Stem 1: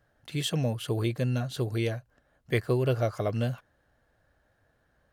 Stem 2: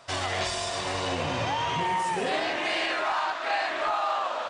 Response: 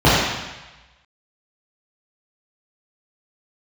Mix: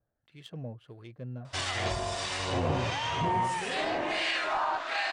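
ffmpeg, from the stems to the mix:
-filter_complex "[0:a]highshelf=frequency=8300:gain=10.5,adynamicsmooth=sensitivity=1.5:basefreq=1700,volume=-11dB[link_01];[1:a]lowshelf=frequency=110:gain=9,adelay=1450,volume=0.5dB[link_02];[link_01][link_02]amix=inputs=2:normalize=0,acrossover=split=1300[link_03][link_04];[link_03]aeval=exprs='val(0)*(1-0.7/2+0.7/2*cos(2*PI*1.5*n/s))':channel_layout=same[link_05];[link_04]aeval=exprs='val(0)*(1-0.7/2-0.7/2*cos(2*PI*1.5*n/s))':channel_layout=same[link_06];[link_05][link_06]amix=inputs=2:normalize=0"

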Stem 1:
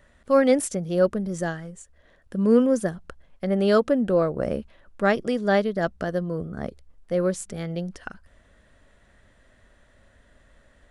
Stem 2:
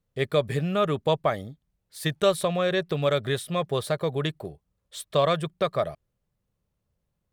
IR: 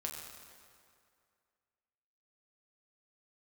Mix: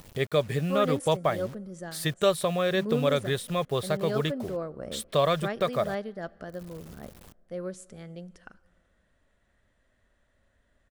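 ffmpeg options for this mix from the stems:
-filter_complex "[0:a]adelay=400,volume=-13dB,asplit=2[link_01][link_02];[link_02]volume=-17dB[link_03];[1:a]acompressor=mode=upward:threshold=-29dB:ratio=2.5,acrusher=bits=7:mix=0:aa=0.000001,volume=-1.5dB[link_04];[2:a]atrim=start_sample=2205[link_05];[link_03][link_05]afir=irnorm=-1:irlink=0[link_06];[link_01][link_04][link_06]amix=inputs=3:normalize=0"

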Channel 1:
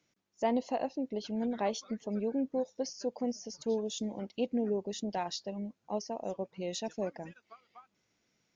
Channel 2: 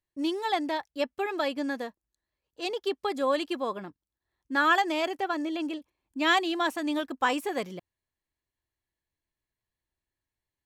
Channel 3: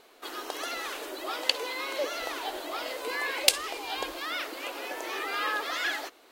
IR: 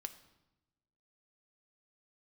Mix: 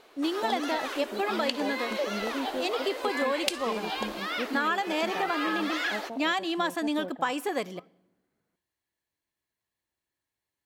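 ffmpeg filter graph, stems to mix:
-filter_complex "[0:a]lowpass=frequency=1700:width=0.5412,lowpass=frequency=1700:width=1.3066,volume=-1.5dB[link_01];[1:a]highpass=frequency=190:poles=1,volume=0.5dB,asplit=2[link_02][link_03];[link_03]volume=-6.5dB[link_04];[2:a]highshelf=frequency=6600:gain=-8,volume=-0.5dB,asplit=2[link_05][link_06];[link_06]volume=-7.5dB[link_07];[3:a]atrim=start_sample=2205[link_08];[link_04][link_07]amix=inputs=2:normalize=0[link_09];[link_09][link_08]afir=irnorm=-1:irlink=0[link_10];[link_01][link_02][link_05][link_10]amix=inputs=4:normalize=0,acompressor=threshold=-24dB:ratio=6"

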